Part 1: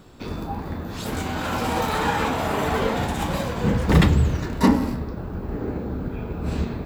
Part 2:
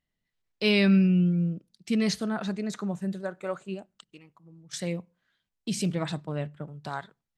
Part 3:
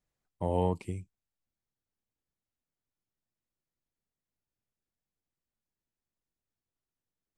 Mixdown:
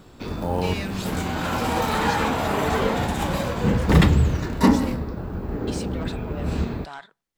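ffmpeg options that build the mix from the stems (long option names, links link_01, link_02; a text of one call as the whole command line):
ffmpeg -i stem1.wav -i stem2.wav -i stem3.wav -filter_complex "[0:a]volume=0.5dB[link_01];[1:a]asplit=2[link_02][link_03];[link_03]highpass=frequency=720:poles=1,volume=24dB,asoftclip=type=tanh:threshold=-11dB[link_04];[link_02][link_04]amix=inputs=2:normalize=0,lowpass=frequency=6200:poles=1,volume=-6dB,volume=-14.5dB[link_05];[2:a]acrusher=bits=7:mode=log:mix=0:aa=0.000001,volume=3dB[link_06];[link_01][link_05][link_06]amix=inputs=3:normalize=0" out.wav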